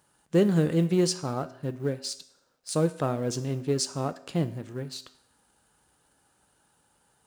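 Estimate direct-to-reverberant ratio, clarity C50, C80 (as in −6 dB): 10.5 dB, 16.0 dB, 18.0 dB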